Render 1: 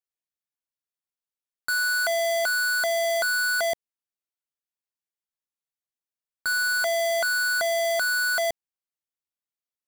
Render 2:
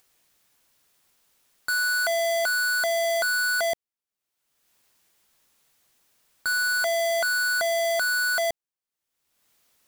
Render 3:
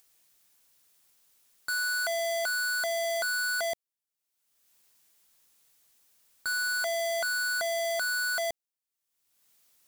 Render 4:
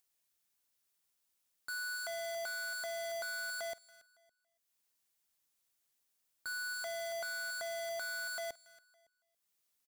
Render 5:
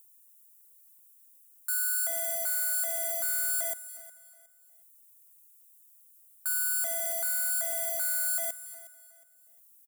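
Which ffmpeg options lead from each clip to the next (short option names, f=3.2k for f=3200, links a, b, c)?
-af "acompressor=mode=upward:threshold=-45dB:ratio=2.5"
-af "highshelf=f=4k:g=8,asoftclip=type=hard:threshold=-21.5dB,volume=-6dB"
-af "aecho=1:1:280|560|840:0.282|0.0535|0.0102,asoftclip=type=tanh:threshold=-35dB,aeval=exprs='0.0178*(cos(1*acos(clip(val(0)/0.0178,-1,1)))-cos(1*PI/2))+0.00794*(cos(3*acos(clip(val(0)/0.0178,-1,1)))-cos(3*PI/2))+0.000112*(cos(7*acos(clip(val(0)/0.0178,-1,1)))-cos(7*PI/2))':c=same,volume=-6dB"
-af "aexciter=amount=8.4:drive=5.9:freq=7.1k,aecho=1:1:363|726|1089:0.141|0.0438|0.0136"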